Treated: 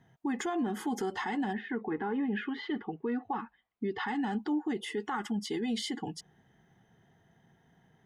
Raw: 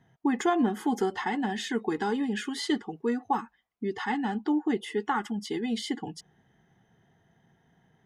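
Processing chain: 1.52–4.07 s: low-pass 1.9 kHz -> 4.5 kHz 24 dB/octave; peak limiter -25 dBFS, peak gain reduction 10 dB

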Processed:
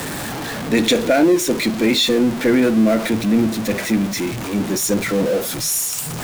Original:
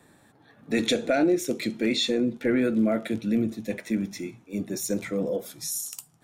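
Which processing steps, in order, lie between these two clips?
jump at every zero crossing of -27.5 dBFS; trim +6.5 dB

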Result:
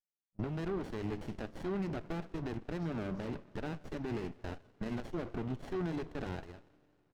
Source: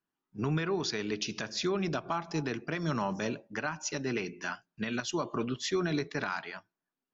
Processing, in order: gate -39 dBFS, range -24 dB; treble shelf 6.7 kHz +11.5 dB; reverse; upward compressor, threshold -51 dBFS; reverse; peak limiter -27 dBFS, peak gain reduction 9.5 dB; half-wave rectifier; distance through air 280 m; speakerphone echo 160 ms, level -22 dB; Schroeder reverb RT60 3.1 s, combs from 27 ms, DRR 18 dB; sliding maximum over 33 samples; trim +2.5 dB

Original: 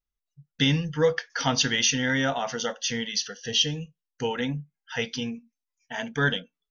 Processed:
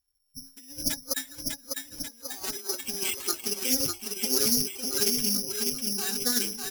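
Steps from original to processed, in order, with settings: Doppler pass-by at 1.74 s, 11 m/s, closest 3.9 m; hum notches 50/100/150/200/250/300/350 Hz; dynamic bell 430 Hz, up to +6 dB, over -57 dBFS, Q 6.3; compressor with a negative ratio -45 dBFS, ratio -0.5; formant-preserving pitch shift +10 st; distance through air 380 m; bouncing-ball echo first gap 600 ms, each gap 0.9×, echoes 5; careless resampling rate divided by 8×, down none, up zero stuff; loudspeaker Doppler distortion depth 0.12 ms; trim +7 dB

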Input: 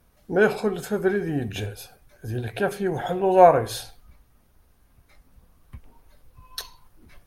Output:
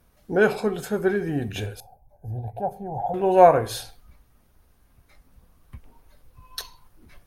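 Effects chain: 1.80–3.14 s: FFT filter 110 Hz 0 dB, 360 Hz -14 dB, 830 Hz +7 dB, 1.2 kHz -24 dB, 1.7 kHz -27 dB, 3.2 kHz -28 dB, 9.3 kHz -20 dB, 14 kHz -11 dB

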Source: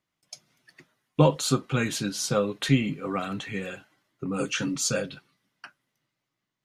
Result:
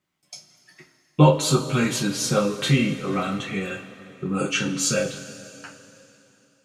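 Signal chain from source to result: two-slope reverb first 0.24 s, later 3.2 s, from -20 dB, DRR -2.5 dB

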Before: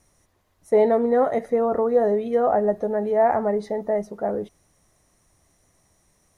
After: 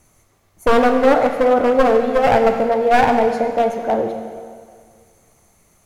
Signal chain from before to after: one-sided wavefolder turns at -17 dBFS; plate-style reverb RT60 2.1 s, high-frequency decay 0.95×, DRR 4.5 dB; speed mistake 44.1 kHz file played as 48 kHz; trim +6 dB

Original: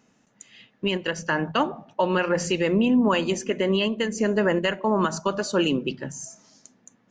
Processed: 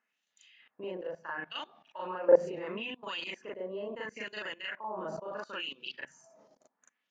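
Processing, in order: LFO band-pass sine 0.73 Hz 530–3700 Hz; level held to a coarse grid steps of 23 dB; reverse echo 38 ms -4 dB; trim +7 dB

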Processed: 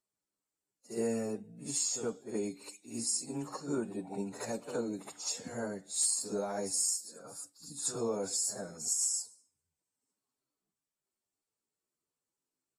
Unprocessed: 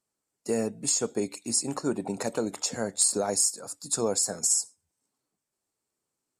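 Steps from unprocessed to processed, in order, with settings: reverse echo 35 ms -9 dB; plain phase-vocoder stretch 2×; trim -7 dB

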